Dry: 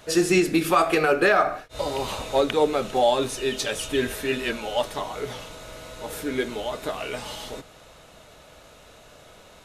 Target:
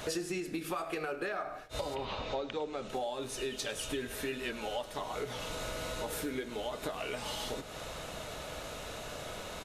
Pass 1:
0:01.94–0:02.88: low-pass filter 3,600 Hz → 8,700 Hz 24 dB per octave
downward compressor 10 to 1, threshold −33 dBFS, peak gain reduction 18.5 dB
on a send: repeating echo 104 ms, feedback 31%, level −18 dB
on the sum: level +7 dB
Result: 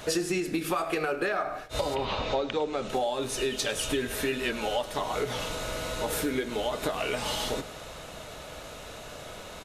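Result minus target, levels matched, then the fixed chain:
downward compressor: peak gain reduction −7.5 dB
0:01.94–0:02.88: low-pass filter 3,600 Hz → 8,700 Hz 24 dB per octave
downward compressor 10 to 1, threshold −41.5 dBFS, peak gain reduction 26 dB
on a send: repeating echo 104 ms, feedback 31%, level −18 dB
on the sum: level +7 dB

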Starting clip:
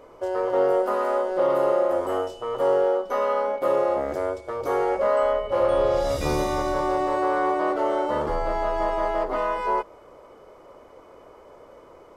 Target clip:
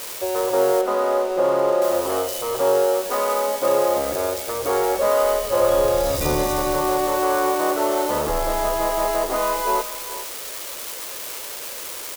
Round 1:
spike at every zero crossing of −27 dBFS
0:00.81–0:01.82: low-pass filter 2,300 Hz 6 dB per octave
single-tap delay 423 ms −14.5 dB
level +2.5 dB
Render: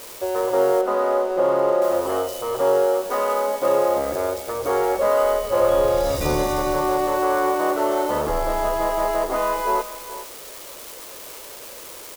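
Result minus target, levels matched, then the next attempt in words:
spike at every zero crossing: distortion −6 dB
spike at every zero crossing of −20.5 dBFS
0:00.81–0:01.82: low-pass filter 2,300 Hz 6 dB per octave
single-tap delay 423 ms −14.5 dB
level +2.5 dB

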